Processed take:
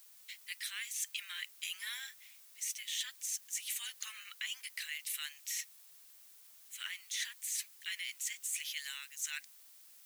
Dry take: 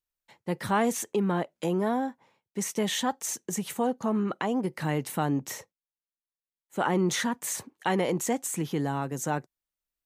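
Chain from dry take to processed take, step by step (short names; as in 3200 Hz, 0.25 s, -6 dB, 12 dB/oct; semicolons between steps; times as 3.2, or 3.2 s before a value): steep high-pass 2100 Hz 36 dB/oct; reverse; compressor 6:1, threshold -50 dBFS, peak gain reduction 20.5 dB; reverse; added noise blue -71 dBFS; gain +12 dB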